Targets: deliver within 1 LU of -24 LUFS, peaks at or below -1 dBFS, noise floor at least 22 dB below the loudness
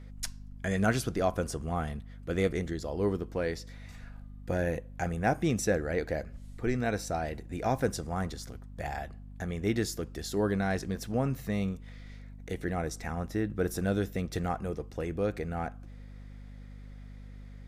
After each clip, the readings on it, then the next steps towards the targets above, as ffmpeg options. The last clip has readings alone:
hum 50 Hz; highest harmonic 250 Hz; hum level -43 dBFS; loudness -32.5 LUFS; peak level -12.5 dBFS; loudness target -24.0 LUFS
-> -af "bandreject=f=50:t=h:w=4,bandreject=f=100:t=h:w=4,bandreject=f=150:t=h:w=4,bandreject=f=200:t=h:w=4,bandreject=f=250:t=h:w=4"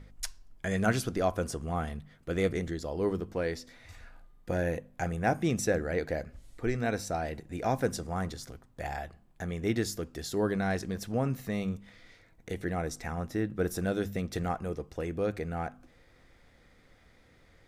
hum not found; loudness -33.0 LUFS; peak level -12.5 dBFS; loudness target -24.0 LUFS
-> -af "volume=2.82"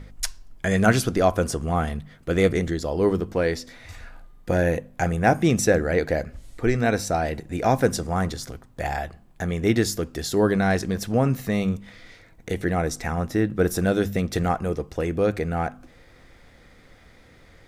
loudness -24.0 LUFS; peak level -3.5 dBFS; noise floor -52 dBFS

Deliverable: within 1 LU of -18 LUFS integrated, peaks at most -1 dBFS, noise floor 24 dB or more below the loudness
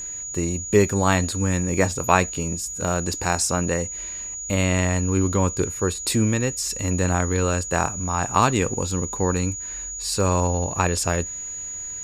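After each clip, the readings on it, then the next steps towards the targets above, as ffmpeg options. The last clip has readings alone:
steady tone 6.8 kHz; tone level -30 dBFS; loudness -23.0 LUFS; peak level -1.5 dBFS; loudness target -18.0 LUFS
-> -af "bandreject=f=6800:w=30"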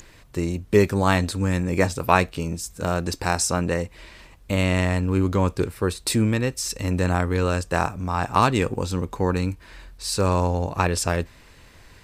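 steady tone not found; loudness -23.5 LUFS; peak level -1.5 dBFS; loudness target -18.0 LUFS
-> -af "volume=1.88,alimiter=limit=0.891:level=0:latency=1"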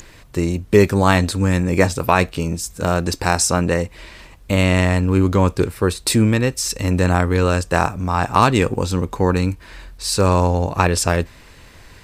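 loudness -18.0 LUFS; peak level -1.0 dBFS; noise floor -45 dBFS

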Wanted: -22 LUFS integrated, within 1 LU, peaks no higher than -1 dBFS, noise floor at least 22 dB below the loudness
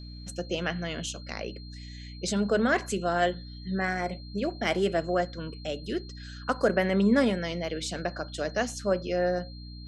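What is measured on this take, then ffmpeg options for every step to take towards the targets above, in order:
hum 60 Hz; highest harmonic 300 Hz; hum level -41 dBFS; steady tone 4.2 kHz; tone level -49 dBFS; loudness -29.0 LUFS; peak level -11.0 dBFS; loudness target -22.0 LUFS
-> -af "bandreject=f=60:t=h:w=6,bandreject=f=120:t=h:w=6,bandreject=f=180:t=h:w=6,bandreject=f=240:t=h:w=6,bandreject=f=300:t=h:w=6"
-af "bandreject=f=4200:w=30"
-af "volume=2.24"

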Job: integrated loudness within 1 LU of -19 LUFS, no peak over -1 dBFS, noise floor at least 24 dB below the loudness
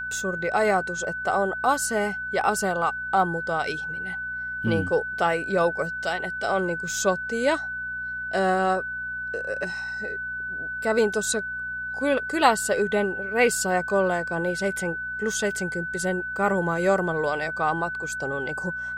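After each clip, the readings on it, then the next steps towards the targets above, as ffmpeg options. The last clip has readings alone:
hum 60 Hz; highest harmonic 240 Hz; hum level -48 dBFS; steady tone 1.5 kHz; tone level -29 dBFS; loudness -25.5 LUFS; peak level -4.5 dBFS; loudness target -19.0 LUFS
-> -af "bandreject=f=60:t=h:w=4,bandreject=f=120:t=h:w=4,bandreject=f=180:t=h:w=4,bandreject=f=240:t=h:w=4"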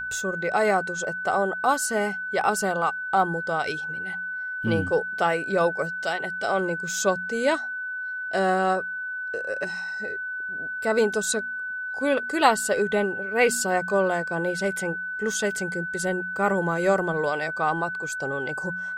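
hum not found; steady tone 1.5 kHz; tone level -29 dBFS
-> -af "bandreject=f=1500:w=30"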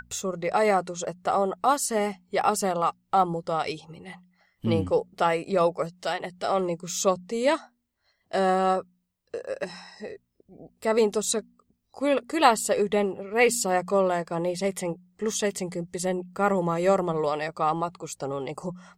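steady tone not found; loudness -26.0 LUFS; peak level -5.0 dBFS; loudness target -19.0 LUFS
-> -af "volume=2.24,alimiter=limit=0.891:level=0:latency=1"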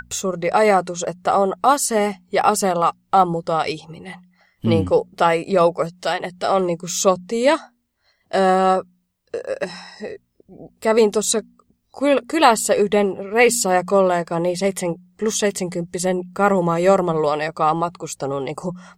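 loudness -19.0 LUFS; peak level -1.0 dBFS; noise floor -67 dBFS

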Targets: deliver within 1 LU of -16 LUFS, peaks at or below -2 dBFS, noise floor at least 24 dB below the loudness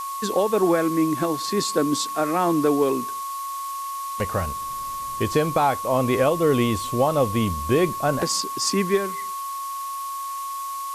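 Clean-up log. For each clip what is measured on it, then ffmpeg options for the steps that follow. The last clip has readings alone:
steady tone 1.1 kHz; tone level -28 dBFS; noise floor -31 dBFS; noise floor target -48 dBFS; loudness -23.5 LUFS; peak level -9.0 dBFS; loudness target -16.0 LUFS
-> -af "bandreject=f=1100:w=30"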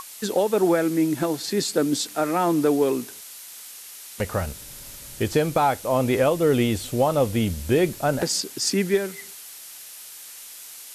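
steady tone not found; noise floor -42 dBFS; noise floor target -47 dBFS
-> -af "afftdn=nr=6:nf=-42"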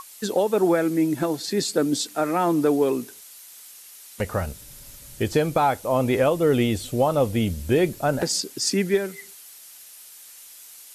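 noise floor -46 dBFS; noise floor target -47 dBFS
-> -af "afftdn=nr=6:nf=-46"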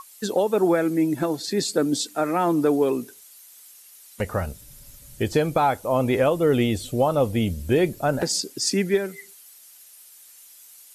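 noise floor -49 dBFS; loudness -23.0 LUFS; peak level -10.0 dBFS; loudness target -16.0 LUFS
-> -af "volume=2.24"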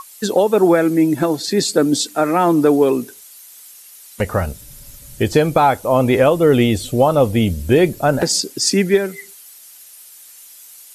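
loudness -16.0 LUFS; peak level -3.0 dBFS; noise floor -42 dBFS

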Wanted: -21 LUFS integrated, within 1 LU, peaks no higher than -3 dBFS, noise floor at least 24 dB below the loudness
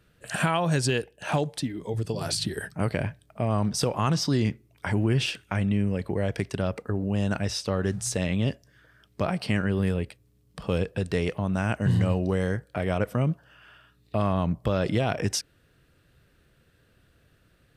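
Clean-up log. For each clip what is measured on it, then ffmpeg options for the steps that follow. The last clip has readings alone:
loudness -27.5 LUFS; peak level -10.0 dBFS; loudness target -21.0 LUFS
-> -af "volume=2.11"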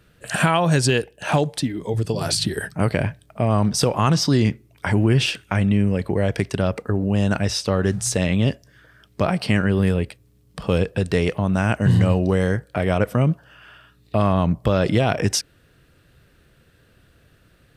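loudness -21.0 LUFS; peak level -3.5 dBFS; noise floor -57 dBFS

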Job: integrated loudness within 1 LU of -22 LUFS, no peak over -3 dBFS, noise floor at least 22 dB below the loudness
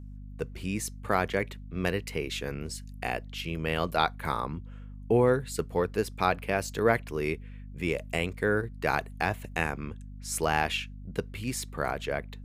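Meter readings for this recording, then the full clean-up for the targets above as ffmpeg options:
hum 50 Hz; highest harmonic 250 Hz; hum level -40 dBFS; loudness -30.5 LUFS; peak level -8.0 dBFS; loudness target -22.0 LUFS
-> -af "bandreject=f=50:t=h:w=4,bandreject=f=100:t=h:w=4,bandreject=f=150:t=h:w=4,bandreject=f=200:t=h:w=4,bandreject=f=250:t=h:w=4"
-af "volume=2.66,alimiter=limit=0.708:level=0:latency=1"

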